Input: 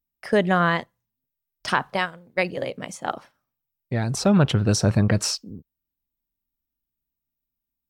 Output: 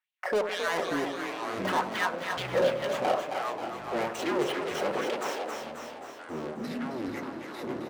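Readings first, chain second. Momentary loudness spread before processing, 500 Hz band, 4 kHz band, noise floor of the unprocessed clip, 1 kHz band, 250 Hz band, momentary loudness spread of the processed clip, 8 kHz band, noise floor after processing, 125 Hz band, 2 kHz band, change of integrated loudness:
13 LU, −1.5 dB, −5.5 dB, −85 dBFS, −2.5 dB, −9.0 dB, 10 LU, −11.5 dB, −44 dBFS, −20.5 dB, −4.5 dB, −8.0 dB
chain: running median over 9 samples
de-essing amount 65%
high-shelf EQ 2,100 Hz −9.5 dB
comb filter 5.4 ms, depth 44%
brickwall limiter −16 dBFS, peak gain reduction 8.5 dB
hard clipping −32.5 dBFS, distortion −4 dB
auto-filter high-pass sine 2.2 Hz 410–3,100 Hz
wave folding −24.5 dBFS
on a send: echo with a time of its own for lows and highs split 720 Hz, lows 80 ms, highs 278 ms, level −7.5 dB
on the sum: delay with pitch and tempo change per echo 426 ms, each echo −7 semitones, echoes 3, each echo −6 dB
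echo with shifted repeats 267 ms, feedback 57%, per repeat +36 Hz, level −8 dB
level +5.5 dB

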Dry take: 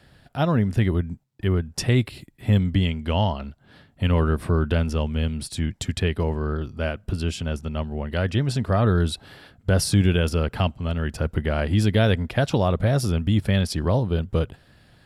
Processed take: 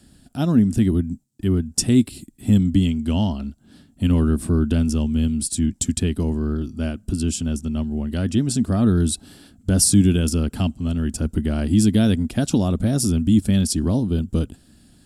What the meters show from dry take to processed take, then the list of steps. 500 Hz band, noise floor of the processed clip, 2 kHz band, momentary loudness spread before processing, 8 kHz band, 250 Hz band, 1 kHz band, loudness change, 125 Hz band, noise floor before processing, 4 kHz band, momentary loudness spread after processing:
−3.0 dB, −55 dBFS, −6.5 dB, 9 LU, +11.5 dB, +7.0 dB, −6.5 dB, +3.0 dB, +0.5 dB, −57 dBFS, +0.5 dB, 9 LU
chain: graphic EQ with 10 bands 125 Hz −8 dB, 250 Hz +10 dB, 500 Hz −10 dB, 1,000 Hz −8 dB, 2,000 Hz −11 dB, 4,000 Hz −4 dB, 8,000 Hz +11 dB
level +4 dB

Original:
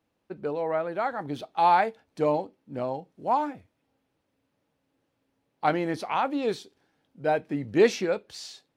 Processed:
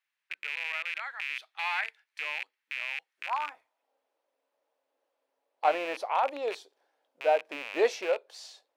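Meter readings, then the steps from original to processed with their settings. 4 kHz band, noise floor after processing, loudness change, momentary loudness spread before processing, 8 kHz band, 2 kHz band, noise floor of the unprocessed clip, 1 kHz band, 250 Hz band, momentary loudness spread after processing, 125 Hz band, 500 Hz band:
+0.5 dB, −85 dBFS, −4.5 dB, 13 LU, can't be measured, +2.5 dB, −77 dBFS, −6.0 dB, −16.0 dB, 10 LU, below −30 dB, −5.0 dB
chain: loose part that buzzes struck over −43 dBFS, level −21 dBFS
thirty-one-band graphic EQ 125 Hz −10 dB, 200 Hz −9 dB, 1,000 Hz +3 dB
high-pass filter sweep 1,900 Hz → 580 Hz, 0:03.12–0:03.92
level −6 dB

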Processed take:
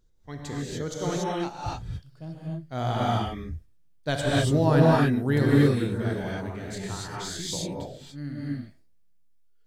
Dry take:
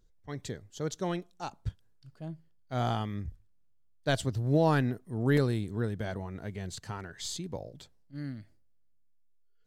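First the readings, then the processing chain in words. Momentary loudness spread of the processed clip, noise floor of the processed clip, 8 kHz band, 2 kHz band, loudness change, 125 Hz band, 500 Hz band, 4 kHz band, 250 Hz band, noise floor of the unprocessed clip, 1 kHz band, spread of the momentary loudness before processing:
19 LU, −56 dBFS, +6.5 dB, +6.0 dB, +6.5 dB, +6.5 dB, +6.5 dB, +7.0 dB, +7.5 dB, −62 dBFS, +6.5 dB, 17 LU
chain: reverb whose tail is shaped and stops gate 310 ms rising, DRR −5.5 dB

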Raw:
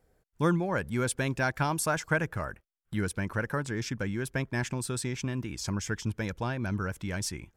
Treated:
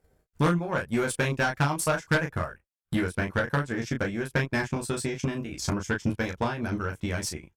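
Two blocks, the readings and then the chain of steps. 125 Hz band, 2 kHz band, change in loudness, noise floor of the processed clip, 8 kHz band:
+2.0 dB, +4.0 dB, +3.0 dB, −78 dBFS, +0.5 dB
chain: transient designer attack +10 dB, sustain −10 dB
ambience of single reflections 13 ms −4 dB, 35 ms −5.5 dB
tube saturation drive 18 dB, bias 0.25

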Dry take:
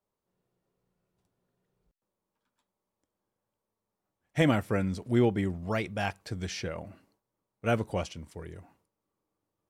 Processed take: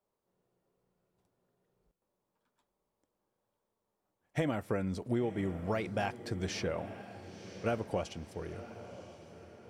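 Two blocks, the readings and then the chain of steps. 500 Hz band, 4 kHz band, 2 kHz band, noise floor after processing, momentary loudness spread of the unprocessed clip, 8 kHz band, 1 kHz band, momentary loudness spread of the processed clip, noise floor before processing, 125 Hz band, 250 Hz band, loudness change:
−3.5 dB, −5.0 dB, −6.0 dB, −85 dBFS, 17 LU, −3.0 dB, −4.0 dB, 15 LU, below −85 dBFS, −6.5 dB, −6.0 dB, −6.0 dB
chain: parametric band 570 Hz +5.5 dB 2.5 octaves
downward compressor 10 to 1, threshold −26 dBFS, peak gain reduction 11 dB
feedback delay with all-pass diffusion 1,001 ms, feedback 47%, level −13 dB
level −2.5 dB

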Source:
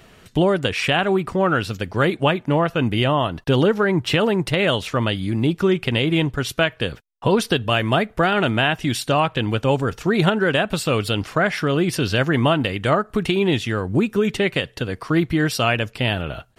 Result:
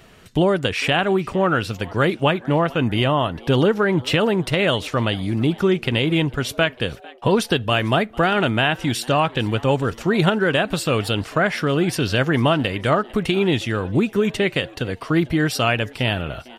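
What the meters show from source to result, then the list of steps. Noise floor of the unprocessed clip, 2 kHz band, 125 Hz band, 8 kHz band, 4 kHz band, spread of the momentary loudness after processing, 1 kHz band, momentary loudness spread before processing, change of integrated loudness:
−51 dBFS, 0.0 dB, 0.0 dB, 0.0 dB, 0.0 dB, 4 LU, 0.0 dB, 4 LU, 0.0 dB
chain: echo with shifted repeats 450 ms, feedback 54%, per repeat +120 Hz, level −23 dB

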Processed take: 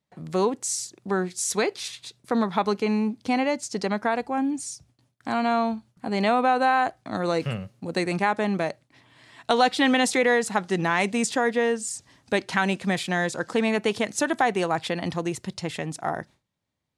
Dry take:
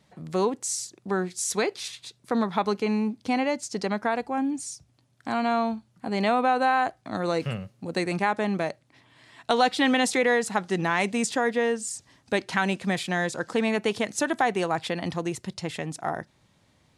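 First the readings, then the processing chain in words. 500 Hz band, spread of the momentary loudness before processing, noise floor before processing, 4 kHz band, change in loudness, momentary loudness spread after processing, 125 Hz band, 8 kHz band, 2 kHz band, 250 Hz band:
+1.5 dB, 11 LU, −65 dBFS, +1.5 dB, +1.5 dB, 11 LU, +1.5 dB, +1.5 dB, +1.5 dB, +1.5 dB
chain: noise gate with hold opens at −50 dBFS
level +1.5 dB

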